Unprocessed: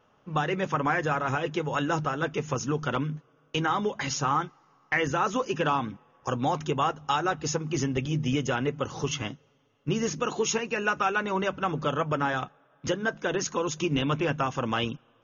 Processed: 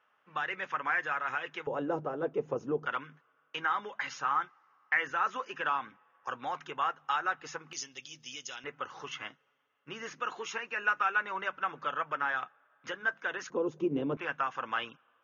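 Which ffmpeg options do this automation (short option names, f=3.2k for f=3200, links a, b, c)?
-af "asetnsamples=n=441:p=0,asendcmd='1.67 bandpass f 480;2.86 bandpass f 1600;7.73 bandpass f 5000;8.64 bandpass f 1600;13.5 bandpass f 410;14.17 bandpass f 1500',bandpass=f=1.8k:t=q:w=1.6:csg=0"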